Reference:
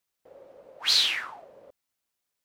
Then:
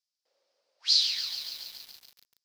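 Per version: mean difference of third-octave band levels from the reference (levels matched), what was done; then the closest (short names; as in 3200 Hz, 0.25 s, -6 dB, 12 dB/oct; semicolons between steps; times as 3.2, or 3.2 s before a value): 11.0 dB: band-pass 5000 Hz, Q 4.5; lo-fi delay 0.141 s, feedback 80%, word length 8-bit, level -8.5 dB; gain +4.5 dB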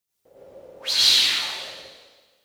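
8.0 dB: bell 1300 Hz -7 dB 2.6 oct; plate-style reverb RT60 1.4 s, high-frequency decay 1×, pre-delay 80 ms, DRR -9 dB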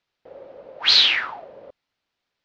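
2.0 dB: LPF 4600 Hz 24 dB/oct; notch 1100 Hz, Q 25; gain +8.5 dB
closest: third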